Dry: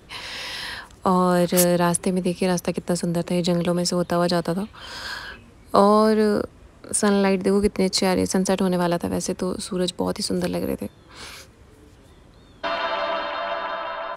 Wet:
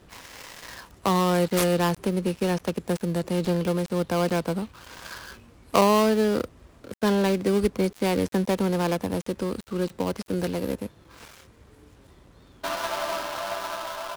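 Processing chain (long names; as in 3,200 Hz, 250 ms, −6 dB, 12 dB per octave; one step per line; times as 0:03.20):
gap after every zero crossing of 0.16 ms
level −3 dB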